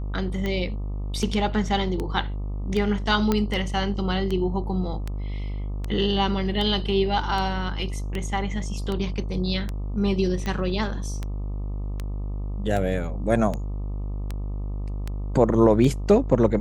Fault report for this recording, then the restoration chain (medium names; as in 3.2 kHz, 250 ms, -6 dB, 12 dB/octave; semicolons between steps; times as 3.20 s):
buzz 50 Hz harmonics 25 -29 dBFS
tick 78 rpm -16 dBFS
3.32 s: pop -9 dBFS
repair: de-click; de-hum 50 Hz, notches 25